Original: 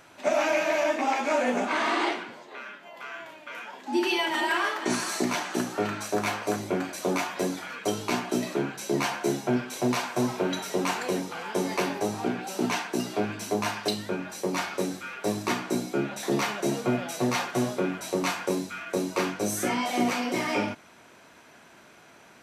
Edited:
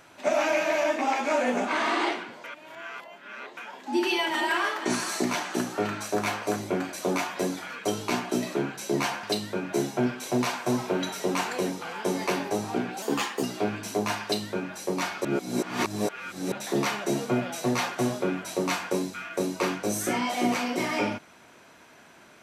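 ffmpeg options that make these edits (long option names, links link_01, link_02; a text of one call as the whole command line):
ffmpeg -i in.wav -filter_complex "[0:a]asplit=9[link_01][link_02][link_03][link_04][link_05][link_06][link_07][link_08][link_09];[link_01]atrim=end=2.442[link_10];[link_02]atrim=start=2.438:end=3.572,asetpts=PTS-STARTPTS,areverse[link_11];[link_03]atrim=start=3.568:end=9.232[link_12];[link_04]atrim=start=13.788:end=14.292[link_13];[link_05]atrim=start=9.228:end=12.524[link_14];[link_06]atrim=start=12.52:end=12.99,asetpts=PTS-STARTPTS,asetrate=50715,aresample=44100,atrim=end_sample=18023,asetpts=PTS-STARTPTS[link_15];[link_07]atrim=start=12.986:end=14.812[link_16];[link_08]atrim=start=14.808:end=16.082,asetpts=PTS-STARTPTS,areverse[link_17];[link_09]atrim=start=16.078[link_18];[link_10][link_11]acrossfade=duration=0.004:curve1=hsin:curve2=hsin[link_19];[link_19][link_12]acrossfade=duration=0.004:curve1=hsin:curve2=hsin[link_20];[link_20][link_13]acrossfade=duration=0.004:curve1=hsin:curve2=hsin[link_21];[link_21][link_14]acrossfade=duration=0.004:curve1=hsin:curve2=hsin[link_22];[link_22][link_15]acrossfade=duration=0.004:curve1=hsin:curve2=hsin[link_23];[link_23][link_16]acrossfade=duration=0.004:curve1=hsin:curve2=hsin[link_24];[link_24][link_17]acrossfade=duration=0.004:curve1=hsin:curve2=hsin[link_25];[link_25][link_18]acrossfade=duration=0.004:curve1=hsin:curve2=hsin" out.wav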